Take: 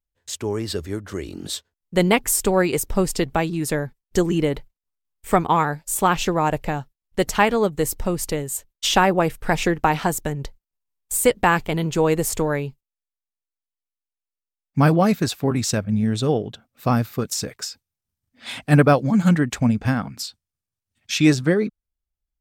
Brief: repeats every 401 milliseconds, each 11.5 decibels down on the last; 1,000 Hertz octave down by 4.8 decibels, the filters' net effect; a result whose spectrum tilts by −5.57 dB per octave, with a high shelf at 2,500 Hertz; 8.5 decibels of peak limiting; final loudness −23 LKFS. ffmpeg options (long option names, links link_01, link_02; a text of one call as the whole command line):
ffmpeg -i in.wav -af "equalizer=frequency=1000:width_type=o:gain=-5.5,highshelf=frequency=2500:gain=-5.5,alimiter=limit=-12.5dB:level=0:latency=1,aecho=1:1:401|802|1203:0.266|0.0718|0.0194,volume=2dB" out.wav